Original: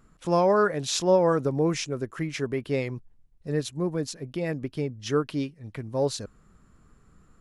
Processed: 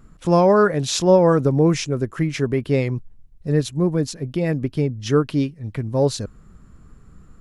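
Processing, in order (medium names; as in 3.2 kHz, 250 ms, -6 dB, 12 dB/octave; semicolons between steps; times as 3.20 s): bass shelf 260 Hz +8 dB; trim +4.5 dB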